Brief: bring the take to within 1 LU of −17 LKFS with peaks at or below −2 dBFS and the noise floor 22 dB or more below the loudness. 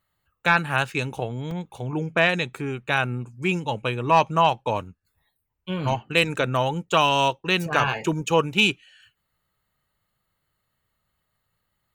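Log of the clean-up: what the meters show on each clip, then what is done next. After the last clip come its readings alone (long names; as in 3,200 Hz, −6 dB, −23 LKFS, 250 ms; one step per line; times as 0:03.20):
number of dropouts 1; longest dropout 2.5 ms; integrated loudness −23.0 LKFS; sample peak −5.0 dBFS; target loudness −17.0 LKFS
→ repair the gap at 0:01.51, 2.5 ms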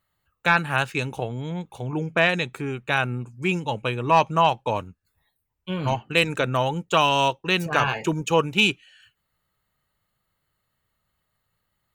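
number of dropouts 0; integrated loudness −23.0 LKFS; sample peak −5.0 dBFS; target loudness −17.0 LKFS
→ level +6 dB
brickwall limiter −2 dBFS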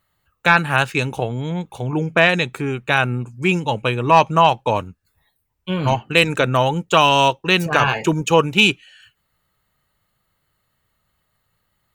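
integrated loudness −17.5 LKFS; sample peak −2.0 dBFS; background noise floor −71 dBFS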